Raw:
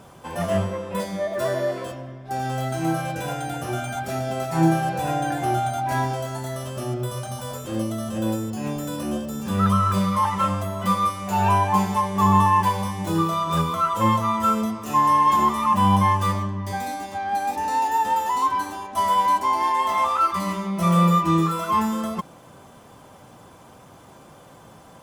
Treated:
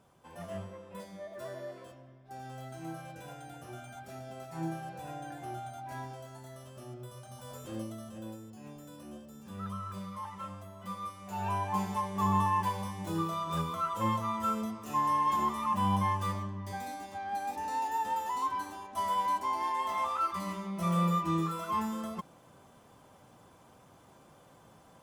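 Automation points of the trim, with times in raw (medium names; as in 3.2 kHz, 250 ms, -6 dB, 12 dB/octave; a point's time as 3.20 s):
7.24 s -18 dB
7.65 s -11 dB
8.35 s -20 dB
10.82 s -20 dB
11.89 s -11 dB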